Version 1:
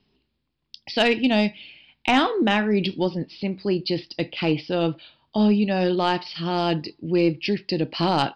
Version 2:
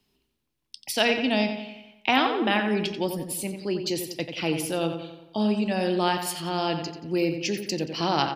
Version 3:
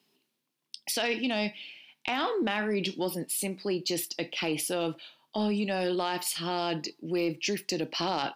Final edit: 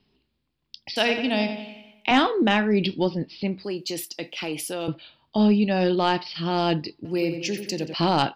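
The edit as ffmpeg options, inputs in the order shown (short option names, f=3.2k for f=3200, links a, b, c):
-filter_complex "[1:a]asplit=2[a][b];[0:a]asplit=4[c][d][e][f];[c]atrim=end=0.962[g];[a]atrim=start=0.958:end=2.112[h];[d]atrim=start=2.108:end=3.642[i];[2:a]atrim=start=3.638:end=4.882[j];[e]atrim=start=4.878:end=7.052[k];[b]atrim=start=7.048:end=7.942[l];[f]atrim=start=7.938[m];[g][h]acrossfade=d=0.004:c1=hsin:c2=hsin[n];[n][i]acrossfade=d=0.004:c1=hsin:c2=hsin[o];[o][j]acrossfade=d=0.004:c1=hsin:c2=hsin[p];[p][k]acrossfade=d=0.004:c1=hsin:c2=hsin[q];[q][l]acrossfade=d=0.004:c1=hsin:c2=hsin[r];[r][m]acrossfade=d=0.004:c1=hsin:c2=hsin"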